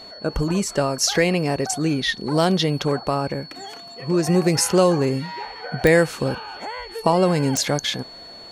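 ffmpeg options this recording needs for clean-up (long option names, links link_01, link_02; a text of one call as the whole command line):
ffmpeg -i in.wav -af "adeclick=threshold=4,bandreject=frequency=4400:width=30" out.wav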